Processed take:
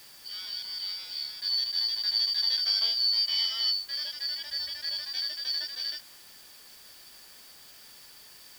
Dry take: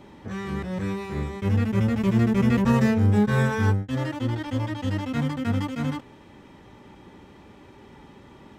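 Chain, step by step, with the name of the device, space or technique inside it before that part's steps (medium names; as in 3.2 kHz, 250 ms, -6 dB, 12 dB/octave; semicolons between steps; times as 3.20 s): split-band scrambled radio (four frequency bands reordered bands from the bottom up 4321; band-pass 370–3200 Hz; white noise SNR 21 dB); 4.46–5.03 s: peaking EQ 63 Hz +13.5 dB 1.2 oct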